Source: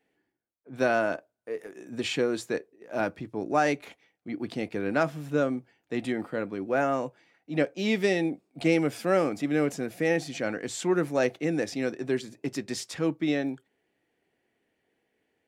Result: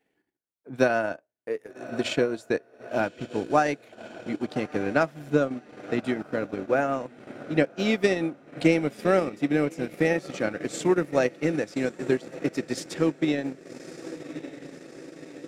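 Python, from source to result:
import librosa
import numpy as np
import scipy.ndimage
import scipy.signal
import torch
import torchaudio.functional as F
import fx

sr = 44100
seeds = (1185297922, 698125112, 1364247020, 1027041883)

y = fx.echo_diffused(x, sr, ms=1152, feedback_pct=61, wet_db=-12.5)
y = fx.transient(y, sr, attack_db=6, sustain_db=-10)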